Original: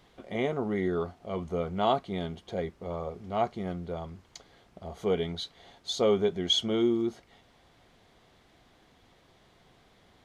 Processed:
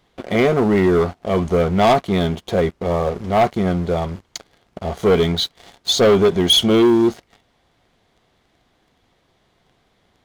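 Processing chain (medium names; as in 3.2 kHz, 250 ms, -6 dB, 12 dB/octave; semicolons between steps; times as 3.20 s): waveshaping leveller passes 3; trim +5 dB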